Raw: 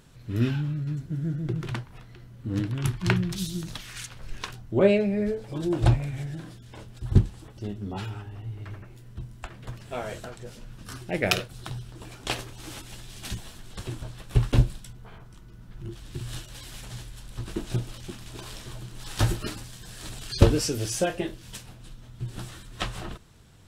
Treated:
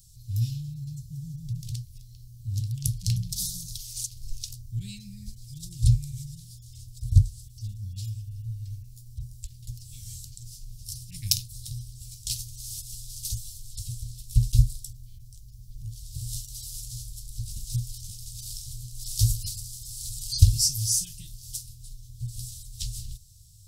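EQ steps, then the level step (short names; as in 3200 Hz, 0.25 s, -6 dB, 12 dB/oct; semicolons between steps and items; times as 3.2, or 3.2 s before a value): elliptic band-stop 110–4800 Hz, stop band 70 dB; high shelf 6200 Hz +10 dB; +3.0 dB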